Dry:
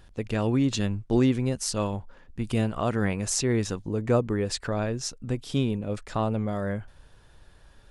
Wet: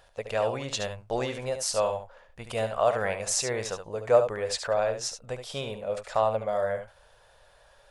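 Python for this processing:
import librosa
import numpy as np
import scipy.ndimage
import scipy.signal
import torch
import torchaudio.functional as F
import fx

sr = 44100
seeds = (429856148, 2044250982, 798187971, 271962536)

y = fx.low_shelf_res(x, sr, hz=410.0, db=-11.5, q=3.0)
y = y + 10.0 ** (-8.5 / 20.0) * np.pad(y, (int(72 * sr / 1000.0), 0))[:len(y)]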